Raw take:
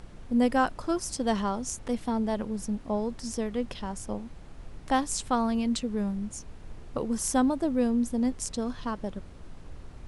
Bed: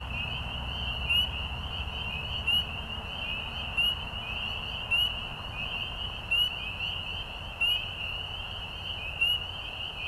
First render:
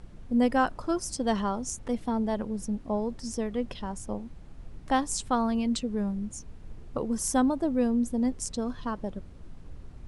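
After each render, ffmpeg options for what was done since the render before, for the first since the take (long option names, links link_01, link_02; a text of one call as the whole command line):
ffmpeg -i in.wav -af "afftdn=noise_reduction=6:noise_floor=-46" out.wav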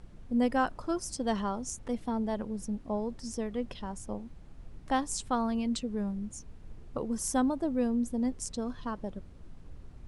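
ffmpeg -i in.wav -af "volume=-3.5dB" out.wav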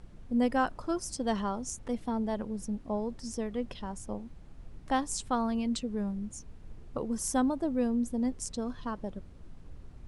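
ffmpeg -i in.wav -af anull out.wav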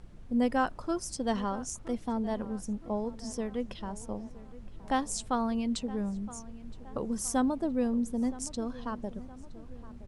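ffmpeg -i in.wav -filter_complex "[0:a]asplit=2[link_01][link_02];[link_02]adelay=968,lowpass=frequency=2400:poles=1,volume=-17.5dB,asplit=2[link_03][link_04];[link_04]adelay=968,lowpass=frequency=2400:poles=1,volume=0.54,asplit=2[link_05][link_06];[link_06]adelay=968,lowpass=frequency=2400:poles=1,volume=0.54,asplit=2[link_07][link_08];[link_08]adelay=968,lowpass=frequency=2400:poles=1,volume=0.54,asplit=2[link_09][link_10];[link_10]adelay=968,lowpass=frequency=2400:poles=1,volume=0.54[link_11];[link_01][link_03][link_05][link_07][link_09][link_11]amix=inputs=6:normalize=0" out.wav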